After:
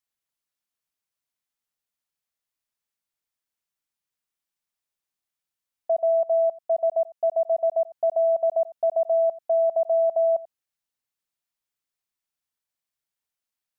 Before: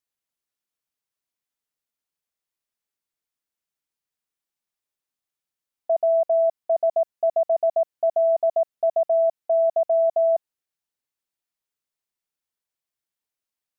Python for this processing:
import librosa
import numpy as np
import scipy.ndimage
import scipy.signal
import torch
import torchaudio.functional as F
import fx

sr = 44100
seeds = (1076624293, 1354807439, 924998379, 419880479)

y = fx.peak_eq(x, sr, hz=380.0, db=-4.0, octaves=1.1)
y = y + 10.0 ** (-19.0 / 20.0) * np.pad(y, (int(89 * sr / 1000.0), 0))[:len(y)]
y = fx.upward_expand(y, sr, threshold_db=-25.0, expansion=1.5, at=(5.97, 7.91))